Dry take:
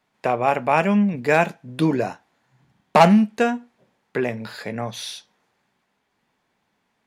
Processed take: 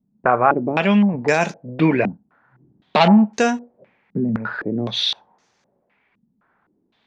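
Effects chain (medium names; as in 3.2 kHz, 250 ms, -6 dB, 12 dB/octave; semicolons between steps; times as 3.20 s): loudness maximiser +8 dB; step-sequenced low-pass 3.9 Hz 210–6000 Hz; trim -5 dB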